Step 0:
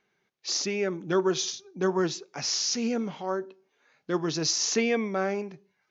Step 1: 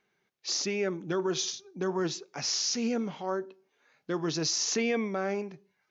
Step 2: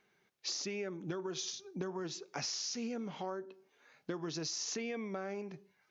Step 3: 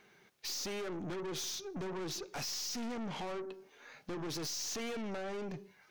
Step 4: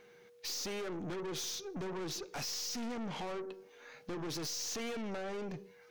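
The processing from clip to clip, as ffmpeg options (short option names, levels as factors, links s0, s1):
-af "alimiter=limit=0.119:level=0:latency=1:release=30,volume=0.841"
-af "acompressor=threshold=0.0126:ratio=12,volume=1.26"
-af "aeval=exprs='(tanh(251*val(0)+0.25)-tanh(0.25))/251':c=same,volume=3.16"
-af "aeval=exprs='val(0)+0.00112*sin(2*PI*480*n/s)':c=same"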